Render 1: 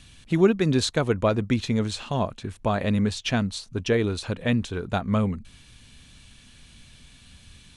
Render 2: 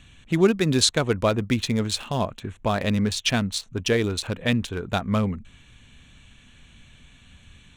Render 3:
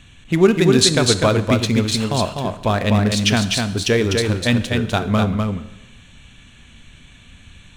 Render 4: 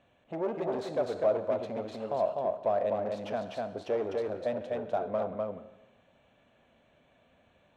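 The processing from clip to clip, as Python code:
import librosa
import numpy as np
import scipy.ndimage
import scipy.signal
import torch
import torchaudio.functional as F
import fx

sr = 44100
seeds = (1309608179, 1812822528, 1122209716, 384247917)

y1 = fx.wiener(x, sr, points=9)
y1 = fx.high_shelf(y1, sr, hz=2800.0, db=11.0)
y2 = y1 + 10.0 ** (-4.0 / 20.0) * np.pad(y1, (int(250 * sr / 1000.0), 0))[:len(y1)]
y2 = fx.rev_plate(y2, sr, seeds[0], rt60_s=1.0, hf_ratio=0.95, predelay_ms=0, drr_db=11.5)
y2 = y2 * librosa.db_to_amplitude(4.5)
y3 = 10.0 ** (-18.0 / 20.0) * np.tanh(y2 / 10.0 ** (-18.0 / 20.0))
y3 = fx.bandpass_q(y3, sr, hz=610.0, q=3.9)
y3 = y3 * librosa.db_to_amplitude(1.5)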